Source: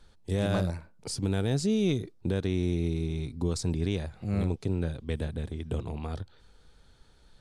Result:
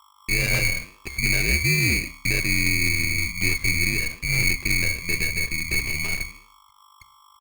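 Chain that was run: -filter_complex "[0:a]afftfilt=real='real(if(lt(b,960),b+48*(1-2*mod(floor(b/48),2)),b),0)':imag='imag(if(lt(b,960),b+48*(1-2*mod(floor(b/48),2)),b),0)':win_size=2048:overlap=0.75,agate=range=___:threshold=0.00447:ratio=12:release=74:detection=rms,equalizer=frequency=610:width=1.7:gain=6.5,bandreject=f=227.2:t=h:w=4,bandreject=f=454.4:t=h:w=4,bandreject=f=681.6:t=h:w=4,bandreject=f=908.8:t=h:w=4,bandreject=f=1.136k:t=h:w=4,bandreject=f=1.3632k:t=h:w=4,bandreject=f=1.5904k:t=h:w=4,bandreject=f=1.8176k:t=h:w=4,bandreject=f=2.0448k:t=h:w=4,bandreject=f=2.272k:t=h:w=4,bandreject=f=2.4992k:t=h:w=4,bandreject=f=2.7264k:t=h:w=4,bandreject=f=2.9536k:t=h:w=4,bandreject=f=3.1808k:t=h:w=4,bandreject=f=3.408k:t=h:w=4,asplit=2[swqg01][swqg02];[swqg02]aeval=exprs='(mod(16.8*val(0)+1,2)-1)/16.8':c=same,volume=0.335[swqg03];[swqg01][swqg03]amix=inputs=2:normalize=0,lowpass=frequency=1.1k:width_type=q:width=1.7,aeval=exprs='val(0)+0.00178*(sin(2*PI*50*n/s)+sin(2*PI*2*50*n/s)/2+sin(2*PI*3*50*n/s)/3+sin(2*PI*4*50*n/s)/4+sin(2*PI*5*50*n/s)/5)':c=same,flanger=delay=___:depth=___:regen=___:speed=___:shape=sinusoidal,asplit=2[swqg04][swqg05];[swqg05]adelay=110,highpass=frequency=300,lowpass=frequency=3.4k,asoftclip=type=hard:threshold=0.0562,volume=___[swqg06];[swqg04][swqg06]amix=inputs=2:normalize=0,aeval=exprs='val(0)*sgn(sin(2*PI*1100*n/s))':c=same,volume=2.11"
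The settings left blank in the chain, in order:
0.0126, 8.9, 6.1, -84, 0.91, 0.0447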